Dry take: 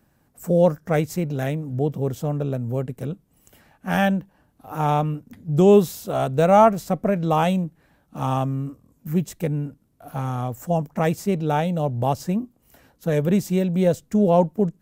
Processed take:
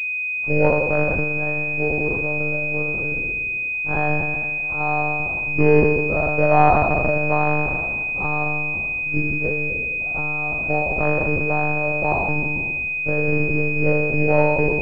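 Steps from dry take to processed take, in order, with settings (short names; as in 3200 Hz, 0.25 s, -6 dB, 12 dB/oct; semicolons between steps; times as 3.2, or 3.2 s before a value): spectral trails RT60 1.60 s; bell 95 Hz -6 dB 0.71 oct; notches 50/100/150/200/250 Hz; monotone LPC vocoder at 8 kHz 150 Hz; pulse-width modulation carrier 2500 Hz; gain -1 dB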